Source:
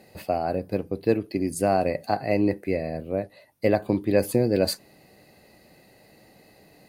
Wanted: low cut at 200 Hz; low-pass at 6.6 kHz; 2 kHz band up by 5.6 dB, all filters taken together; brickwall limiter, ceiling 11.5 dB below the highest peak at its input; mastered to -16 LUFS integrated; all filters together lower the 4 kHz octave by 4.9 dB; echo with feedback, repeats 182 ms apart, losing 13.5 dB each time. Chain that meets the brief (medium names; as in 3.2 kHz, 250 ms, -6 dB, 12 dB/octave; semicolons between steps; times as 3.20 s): high-pass 200 Hz; low-pass 6.6 kHz; peaking EQ 2 kHz +8.5 dB; peaking EQ 4 kHz -6.5 dB; peak limiter -18.5 dBFS; feedback delay 182 ms, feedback 21%, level -13.5 dB; trim +14.5 dB